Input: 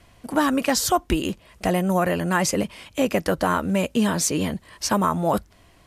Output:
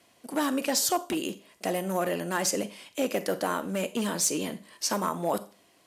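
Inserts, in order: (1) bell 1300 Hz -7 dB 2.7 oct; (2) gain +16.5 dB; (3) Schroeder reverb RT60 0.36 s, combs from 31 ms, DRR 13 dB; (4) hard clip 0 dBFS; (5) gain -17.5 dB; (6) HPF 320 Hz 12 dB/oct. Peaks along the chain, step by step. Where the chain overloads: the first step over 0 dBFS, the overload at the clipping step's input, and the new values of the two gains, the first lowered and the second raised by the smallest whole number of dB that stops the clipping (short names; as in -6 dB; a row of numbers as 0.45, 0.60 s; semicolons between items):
-9.5, +7.0, +7.0, 0.0, -17.5, -13.5 dBFS; step 2, 7.0 dB; step 2 +9.5 dB, step 5 -10.5 dB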